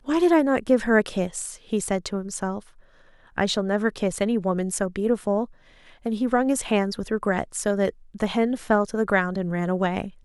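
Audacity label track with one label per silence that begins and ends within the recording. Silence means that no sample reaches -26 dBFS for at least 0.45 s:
2.580000	3.380000	silence
5.440000	6.060000	silence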